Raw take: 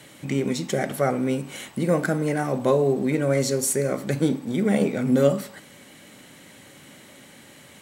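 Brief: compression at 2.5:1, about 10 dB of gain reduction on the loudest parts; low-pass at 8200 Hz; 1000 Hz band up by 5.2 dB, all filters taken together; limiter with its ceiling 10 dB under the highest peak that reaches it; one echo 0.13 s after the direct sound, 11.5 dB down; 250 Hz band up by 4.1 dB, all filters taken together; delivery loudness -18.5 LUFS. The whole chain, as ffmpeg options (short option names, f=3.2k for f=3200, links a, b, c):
-af "lowpass=8.2k,equalizer=f=250:t=o:g=4.5,equalizer=f=1k:t=o:g=7,acompressor=threshold=-26dB:ratio=2.5,alimiter=limit=-22.5dB:level=0:latency=1,aecho=1:1:130:0.266,volume=13dB"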